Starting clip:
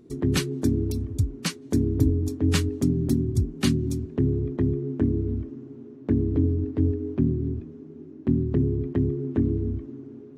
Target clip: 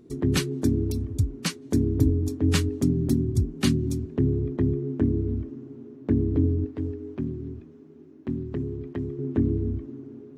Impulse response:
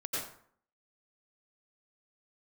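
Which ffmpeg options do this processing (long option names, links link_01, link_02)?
-filter_complex "[0:a]asettb=1/sr,asplit=3[link_01][link_02][link_03];[link_01]atrim=end=6.664[link_04];[link_02]atrim=start=6.66:end=9.19,asetpts=PTS-STARTPTS,afade=type=in:duration=0.004:curve=qsin,afade=type=out:start_time=2.526:duration=0.004:curve=qsin,lowshelf=frequency=490:gain=-9[link_05];[link_03]atrim=start=9.186[link_06];[link_04][link_05]acrossfade=duration=0.004:curve1=hsin:curve2=qsin[link_07];[link_07][link_06]acrossfade=duration=0.004:curve1=qsin:curve2=hsin"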